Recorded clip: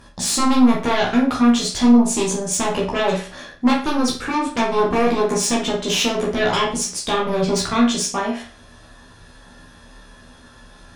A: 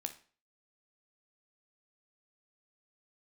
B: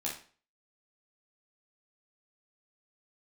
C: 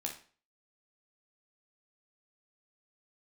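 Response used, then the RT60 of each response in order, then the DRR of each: B; 0.40, 0.40, 0.40 s; 7.0, -4.5, 0.5 dB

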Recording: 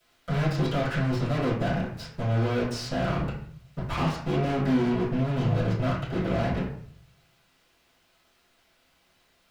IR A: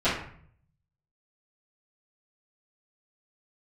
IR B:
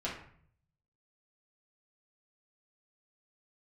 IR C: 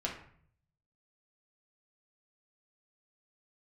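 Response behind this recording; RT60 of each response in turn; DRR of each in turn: A; 0.55, 0.55, 0.55 s; -16.5, -7.0, -2.5 dB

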